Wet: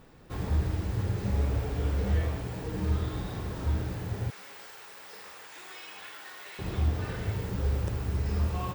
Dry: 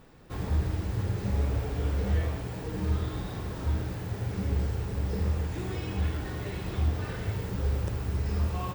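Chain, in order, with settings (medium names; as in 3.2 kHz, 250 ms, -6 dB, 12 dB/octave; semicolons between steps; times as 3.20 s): 4.30–6.59 s: high-pass 1.1 kHz 12 dB/octave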